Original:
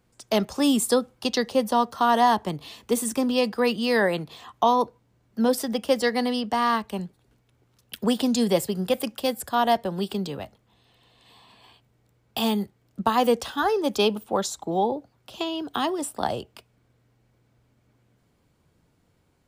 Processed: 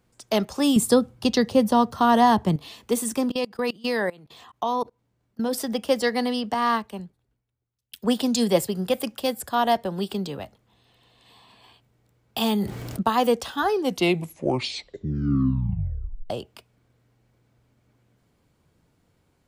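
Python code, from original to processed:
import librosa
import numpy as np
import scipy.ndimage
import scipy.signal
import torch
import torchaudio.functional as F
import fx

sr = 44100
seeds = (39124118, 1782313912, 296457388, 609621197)

y = fx.peak_eq(x, sr, hz=100.0, db=14.0, octaves=2.4, at=(0.76, 2.56))
y = fx.level_steps(y, sr, step_db=24, at=(3.29, 5.53))
y = fx.band_widen(y, sr, depth_pct=70, at=(6.54, 8.67))
y = fx.env_flatten(y, sr, amount_pct=70, at=(12.41, 13.03))
y = fx.edit(y, sr, fx.tape_stop(start_s=13.64, length_s=2.66), tone=tone)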